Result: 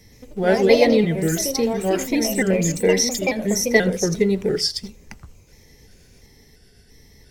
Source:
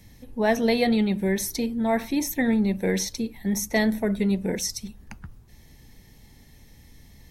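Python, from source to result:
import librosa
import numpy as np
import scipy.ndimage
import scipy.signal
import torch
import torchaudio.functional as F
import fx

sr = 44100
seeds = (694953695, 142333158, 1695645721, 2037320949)

p1 = fx.pitch_trill(x, sr, semitones=-3.0, every_ms=345)
p2 = fx.peak_eq(p1, sr, hz=5600.0, db=11.5, octaves=0.39)
p3 = fx.notch(p2, sr, hz=6600.0, q=8.2)
p4 = fx.small_body(p3, sr, hz=(430.0, 2000.0), ring_ms=35, db=12)
p5 = np.where(np.abs(p4) >= 10.0 ** (-32.5 / 20.0), p4, 0.0)
p6 = p4 + (p5 * 10.0 ** (-11.5 / 20.0))
p7 = fx.echo_pitch(p6, sr, ms=121, semitones=3, count=2, db_per_echo=-6.0)
p8 = p7 + fx.echo_single(p7, sr, ms=82, db=-22.0, dry=0)
y = p8 * 10.0 ** (-1.0 / 20.0)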